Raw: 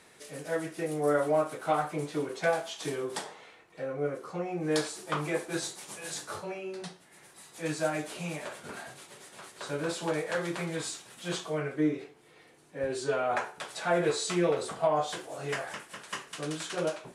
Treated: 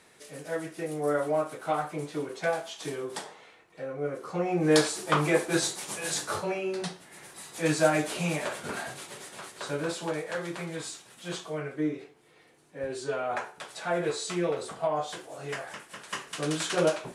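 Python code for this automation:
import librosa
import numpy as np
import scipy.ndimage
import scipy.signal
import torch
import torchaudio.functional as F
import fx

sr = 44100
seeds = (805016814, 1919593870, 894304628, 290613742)

y = fx.gain(x, sr, db=fx.line((4.02, -1.0), (4.53, 7.0), (9.15, 7.0), (10.22, -2.0), (15.71, -2.0), (16.62, 6.5)))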